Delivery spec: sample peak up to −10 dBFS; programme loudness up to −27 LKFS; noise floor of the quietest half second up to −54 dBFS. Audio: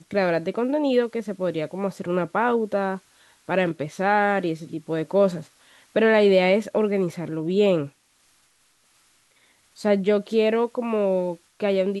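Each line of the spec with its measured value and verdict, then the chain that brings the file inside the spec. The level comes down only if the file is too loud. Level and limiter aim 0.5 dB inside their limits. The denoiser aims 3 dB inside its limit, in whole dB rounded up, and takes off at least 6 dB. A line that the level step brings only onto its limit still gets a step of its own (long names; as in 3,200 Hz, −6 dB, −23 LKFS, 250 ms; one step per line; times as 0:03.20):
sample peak −7.5 dBFS: out of spec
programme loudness −23.0 LKFS: out of spec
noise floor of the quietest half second −63 dBFS: in spec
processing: level −4.5 dB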